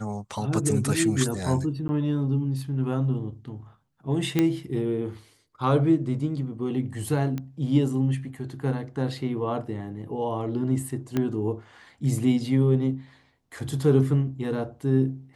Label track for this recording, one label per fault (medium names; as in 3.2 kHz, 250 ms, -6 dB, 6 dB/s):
1.880000	1.890000	dropout 10 ms
4.390000	4.390000	pop -9 dBFS
7.380000	7.380000	pop -19 dBFS
11.170000	11.170000	pop -13 dBFS